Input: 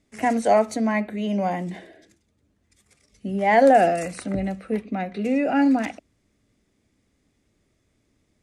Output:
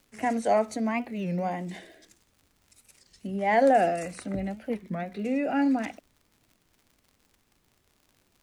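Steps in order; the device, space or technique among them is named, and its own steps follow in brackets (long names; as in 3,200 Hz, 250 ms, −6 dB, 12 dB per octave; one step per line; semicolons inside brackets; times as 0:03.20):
0:01.69–0:03.27: high-shelf EQ 2,600 Hz +11.5 dB
warped LP (wow of a warped record 33 1/3 rpm, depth 250 cents; surface crackle 91 per second −42 dBFS; pink noise bed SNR 42 dB)
level −5.5 dB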